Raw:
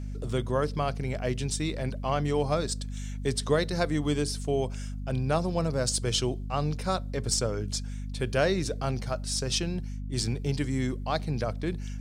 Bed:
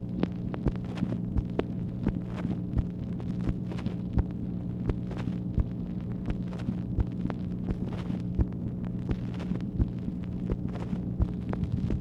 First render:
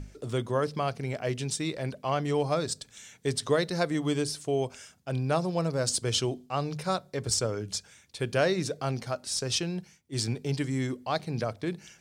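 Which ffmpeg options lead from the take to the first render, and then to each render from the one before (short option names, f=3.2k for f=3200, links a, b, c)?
-af "bandreject=f=50:t=h:w=6,bandreject=f=100:t=h:w=6,bandreject=f=150:t=h:w=6,bandreject=f=200:t=h:w=6,bandreject=f=250:t=h:w=6"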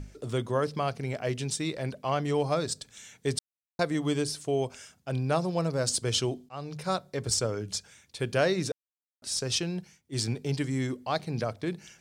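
-filter_complex "[0:a]asplit=6[a][b][c][d][e][f];[a]atrim=end=3.39,asetpts=PTS-STARTPTS,afade=t=out:st=3.386:d=0.004:c=hsin[g];[b]atrim=start=3.39:end=3.79,asetpts=PTS-STARTPTS,volume=0[h];[c]atrim=start=3.79:end=6.49,asetpts=PTS-STARTPTS,afade=t=in:d=0.004:c=hsin,afade=t=out:st=2.696:d=0.004:c=hsin:silence=0.188365[i];[d]atrim=start=6.49:end=8.72,asetpts=PTS-STARTPTS,afade=t=in:d=0.45:silence=0.188365,afade=t=out:st=2.226:d=0.004:c=hsin[j];[e]atrim=start=8.72:end=9.22,asetpts=PTS-STARTPTS,volume=0[k];[f]atrim=start=9.22,asetpts=PTS-STARTPTS,afade=t=in:d=0.004:c=hsin[l];[g][h][i][j][k][l]concat=n=6:v=0:a=1"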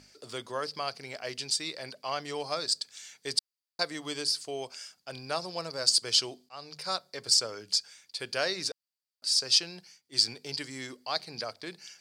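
-af "highpass=f=1.1k:p=1,equalizer=f=4.7k:w=5.2:g=15"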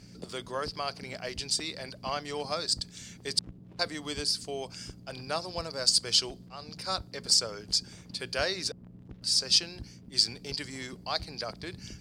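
-filter_complex "[1:a]volume=-17dB[a];[0:a][a]amix=inputs=2:normalize=0"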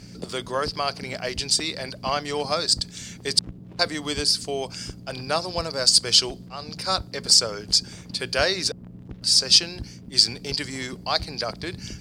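-af "volume=8dB,alimiter=limit=-3dB:level=0:latency=1"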